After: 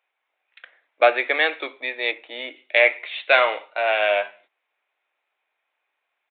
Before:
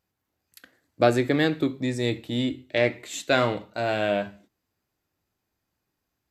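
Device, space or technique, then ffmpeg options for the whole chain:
musical greeting card: -filter_complex "[0:a]aresample=8000,aresample=44100,highpass=f=570:w=0.5412,highpass=f=570:w=1.3066,equalizer=f=2.3k:t=o:w=0.36:g=9,asettb=1/sr,asplit=3[a][b][c];[a]atrim=end=2.114[d];[b]atrim=start=2.11:end=2.56,asetpts=PTS-STARTPTS,afade=t=in:d=0.004:c=qsin,afade=t=out:st=0.446:d=0.004:c=qsin,lowpass=f=1.6k:p=1[e];[c]atrim=start=2.556[f];[d][e]acrossfade=d=0.004:c1=hsin:c2=qsin[g];[g][f]acrossfade=d=0.004:c1=qsin:c2=hsin,volume=6dB"

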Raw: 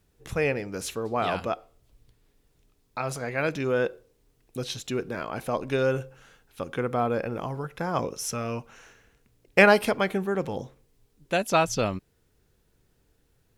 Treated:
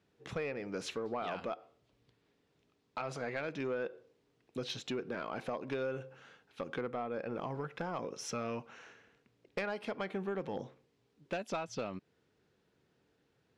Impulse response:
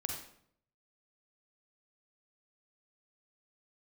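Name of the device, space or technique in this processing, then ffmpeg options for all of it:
AM radio: -filter_complex "[0:a]highpass=160,lowpass=4.3k,acompressor=threshold=-30dB:ratio=10,asoftclip=type=tanh:threshold=-25dB,asplit=3[a][b][c];[a]afade=t=out:st=6.84:d=0.02[d];[b]agate=range=-33dB:threshold=-35dB:ratio=3:detection=peak,afade=t=in:st=6.84:d=0.02,afade=t=out:st=7.25:d=0.02[e];[c]afade=t=in:st=7.25:d=0.02[f];[d][e][f]amix=inputs=3:normalize=0,volume=-2dB"

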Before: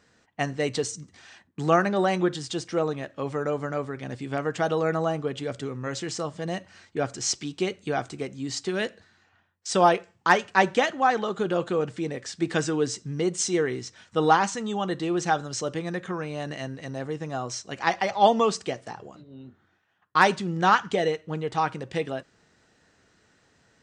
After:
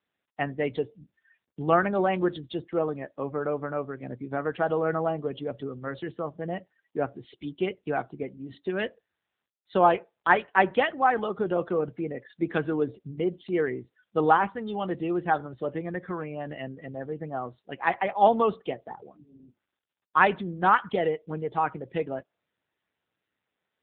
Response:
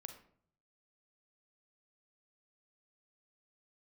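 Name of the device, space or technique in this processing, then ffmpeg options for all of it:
mobile call with aggressive noise cancelling: -af "highpass=f=160:p=1,afftdn=nr=30:nf=-39" -ar 8000 -c:a libopencore_amrnb -b:a 7950

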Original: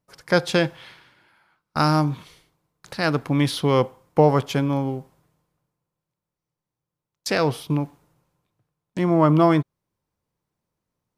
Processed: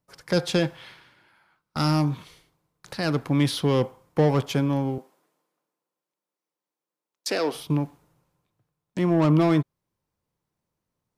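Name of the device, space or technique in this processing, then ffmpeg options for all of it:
one-band saturation: -filter_complex "[0:a]acrossover=split=440|3000[a][b][c];[b]asoftclip=type=tanh:threshold=-24dB[d];[a][d][c]amix=inputs=3:normalize=0,asettb=1/sr,asplit=3[e][f][g];[e]atrim=end=4.984[h];[f]atrim=start=4.98:end=7.55,asetpts=PTS-STARTPTS,afade=t=in:d=0.004:c=qsin,afade=t=out:st=2.566:d=0.004:c=qsin,highpass=f=260:w=0.5412,highpass=f=260:w=1.3066[i];[g]atrim=start=7.546[j];[h][i]acrossfade=d=0.004:c1=hsin:c2=qsin[k];[k][j]acrossfade=d=0.004:c1=qsin:c2=hsin,volume=-1dB"

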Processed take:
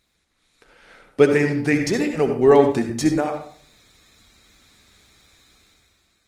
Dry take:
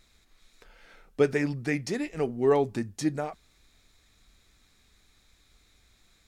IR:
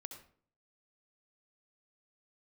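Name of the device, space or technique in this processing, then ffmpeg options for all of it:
far-field microphone of a smart speaker: -filter_complex "[1:a]atrim=start_sample=2205[a];[0:a][a]afir=irnorm=-1:irlink=0,highpass=f=110:p=1,dynaudnorm=f=110:g=13:m=12dB,volume=3dB" -ar 48000 -c:a libopus -b:a 24k

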